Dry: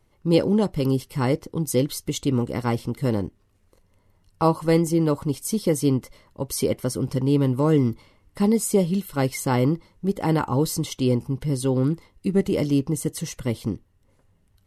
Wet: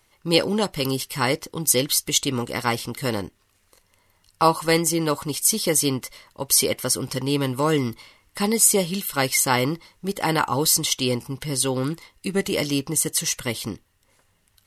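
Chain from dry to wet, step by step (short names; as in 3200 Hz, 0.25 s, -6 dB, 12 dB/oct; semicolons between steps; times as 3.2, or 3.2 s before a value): tilt shelf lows -9 dB, about 770 Hz; gain +3 dB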